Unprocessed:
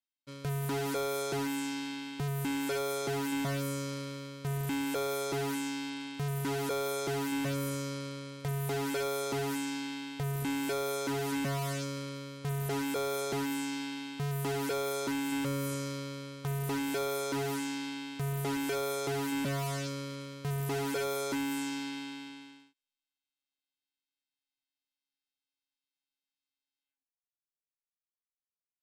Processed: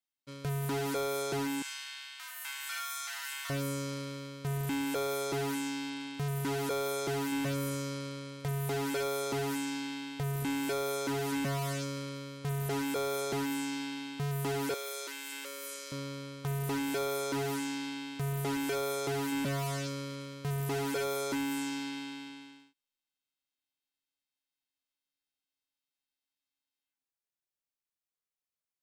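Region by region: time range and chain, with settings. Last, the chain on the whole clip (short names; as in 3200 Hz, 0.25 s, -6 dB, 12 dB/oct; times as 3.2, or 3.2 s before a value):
1.62–3.5 inverse Chebyshev high-pass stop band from 460 Hz, stop band 50 dB + flutter echo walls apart 5.7 m, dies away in 0.38 s
14.74–15.92 HPF 480 Hz 24 dB/oct + bell 830 Hz -12.5 dB 1.2 oct
whole clip: dry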